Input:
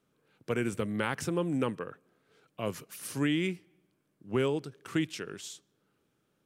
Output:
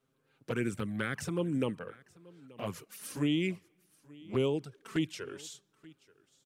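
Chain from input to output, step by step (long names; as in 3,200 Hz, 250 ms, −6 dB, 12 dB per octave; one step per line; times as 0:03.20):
flanger swept by the level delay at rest 7.7 ms, full sweep at −24.5 dBFS
single-tap delay 881 ms −23 dB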